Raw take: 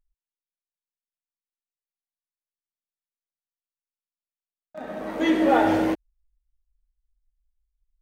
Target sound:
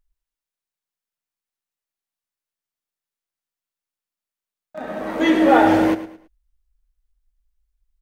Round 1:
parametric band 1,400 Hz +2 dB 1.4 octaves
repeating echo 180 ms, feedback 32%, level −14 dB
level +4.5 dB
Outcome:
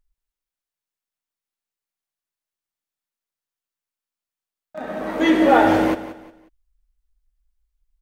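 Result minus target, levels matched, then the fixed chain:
echo 71 ms late
parametric band 1,400 Hz +2 dB 1.4 octaves
repeating echo 109 ms, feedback 32%, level −14 dB
level +4.5 dB

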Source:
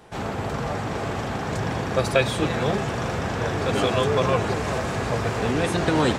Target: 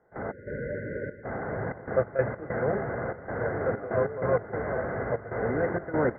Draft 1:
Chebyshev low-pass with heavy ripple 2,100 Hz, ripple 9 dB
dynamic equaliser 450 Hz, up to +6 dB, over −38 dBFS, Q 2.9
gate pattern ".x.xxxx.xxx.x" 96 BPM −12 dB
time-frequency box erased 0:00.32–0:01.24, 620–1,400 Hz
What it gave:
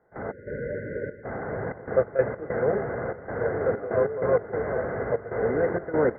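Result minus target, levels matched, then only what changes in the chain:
125 Hz band −3.5 dB
change: dynamic equaliser 120 Hz, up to +6 dB, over −38 dBFS, Q 2.9

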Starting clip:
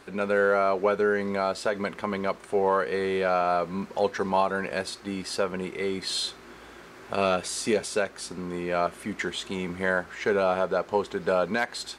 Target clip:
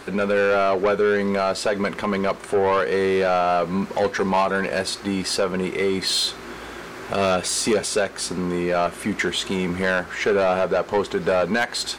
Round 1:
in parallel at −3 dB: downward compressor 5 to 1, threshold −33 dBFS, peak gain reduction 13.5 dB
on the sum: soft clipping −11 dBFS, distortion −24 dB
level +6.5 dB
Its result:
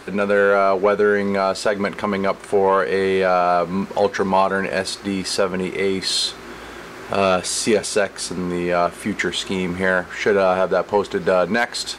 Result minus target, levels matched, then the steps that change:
soft clipping: distortion −12 dB
change: soft clipping −20 dBFS, distortion −12 dB

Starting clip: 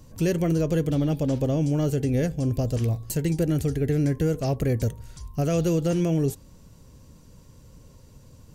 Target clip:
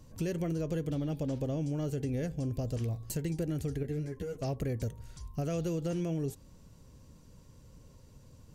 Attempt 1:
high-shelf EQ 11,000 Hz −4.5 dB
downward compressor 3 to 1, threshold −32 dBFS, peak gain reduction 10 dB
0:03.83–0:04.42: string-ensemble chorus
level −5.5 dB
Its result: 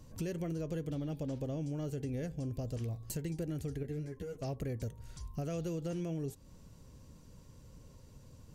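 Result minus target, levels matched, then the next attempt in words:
downward compressor: peak gain reduction +4.5 dB
high-shelf EQ 11,000 Hz −4.5 dB
downward compressor 3 to 1, threshold −25.5 dBFS, peak gain reduction 5.5 dB
0:03.83–0:04.42: string-ensemble chorus
level −5.5 dB

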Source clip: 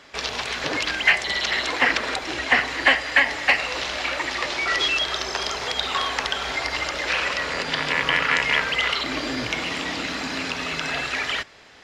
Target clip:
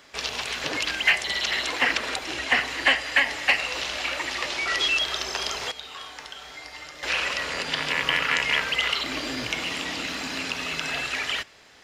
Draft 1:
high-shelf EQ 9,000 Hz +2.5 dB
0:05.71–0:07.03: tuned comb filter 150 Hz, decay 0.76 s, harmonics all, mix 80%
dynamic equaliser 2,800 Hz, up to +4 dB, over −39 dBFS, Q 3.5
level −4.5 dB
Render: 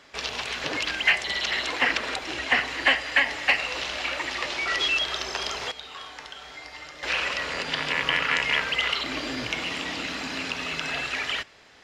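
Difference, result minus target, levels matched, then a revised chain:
8,000 Hz band −3.0 dB
high-shelf EQ 9,000 Hz +14.5 dB
0:05.71–0:07.03: tuned comb filter 150 Hz, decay 0.76 s, harmonics all, mix 80%
dynamic equaliser 2,800 Hz, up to +4 dB, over −39 dBFS, Q 3.5
level −4.5 dB

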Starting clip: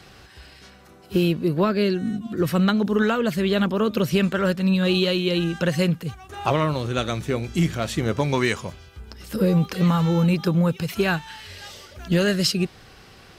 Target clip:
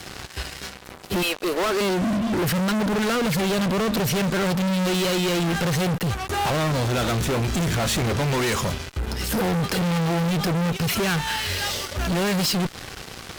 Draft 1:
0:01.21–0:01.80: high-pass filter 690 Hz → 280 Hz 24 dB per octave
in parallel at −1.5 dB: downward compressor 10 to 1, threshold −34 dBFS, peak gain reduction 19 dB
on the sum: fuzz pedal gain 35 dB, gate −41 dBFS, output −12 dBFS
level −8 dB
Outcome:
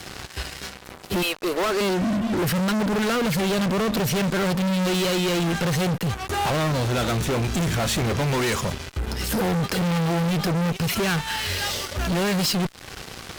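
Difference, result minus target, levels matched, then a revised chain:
downward compressor: peak gain reduction +10.5 dB
0:01.21–0:01.80: high-pass filter 690 Hz → 280 Hz 24 dB per octave
in parallel at −1.5 dB: downward compressor 10 to 1, threshold −22.5 dBFS, peak gain reduction 9 dB
on the sum: fuzz pedal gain 35 dB, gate −41 dBFS, output −12 dBFS
level −8 dB

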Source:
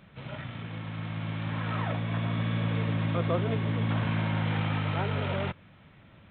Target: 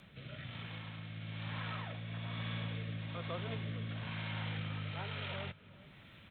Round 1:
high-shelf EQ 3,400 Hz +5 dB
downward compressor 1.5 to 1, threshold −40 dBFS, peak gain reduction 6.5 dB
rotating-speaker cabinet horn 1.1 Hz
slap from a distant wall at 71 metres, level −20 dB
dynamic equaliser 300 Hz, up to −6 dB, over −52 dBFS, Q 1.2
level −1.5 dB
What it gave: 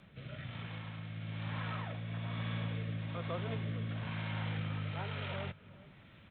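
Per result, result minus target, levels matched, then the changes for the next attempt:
4,000 Hz band −4.0 dB; downward compressor: peak gain reduction −3 dB
change: high-shelf EQ 3,400 Hz +15.5 dB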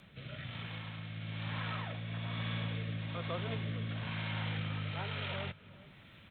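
downward compressor: peak gain reduction −2.5 dB
change: downward compressor 1.5 to 1, threshold −48 dBFS, peak gain reduction 9.5 dB

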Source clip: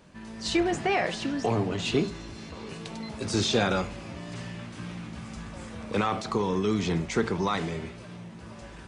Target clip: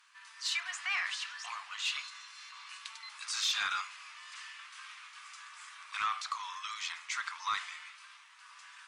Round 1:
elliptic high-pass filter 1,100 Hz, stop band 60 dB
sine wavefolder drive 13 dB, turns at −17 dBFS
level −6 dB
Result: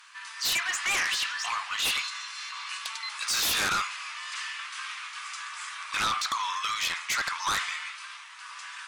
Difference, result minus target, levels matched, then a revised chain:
sine wavefolder: distortion +22 dB
elliptic high-pass filter 1,100 Hz, stop band 60 dB
sine wavefolder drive 1 dB, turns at −17 dBFS
level −6 dB

